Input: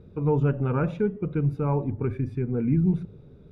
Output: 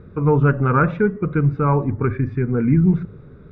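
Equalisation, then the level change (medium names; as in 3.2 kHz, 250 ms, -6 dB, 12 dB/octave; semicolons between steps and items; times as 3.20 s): distance through air 190 m; high-order bell 1.5 kHz +10 dB 1.2 oct; +7.0 dB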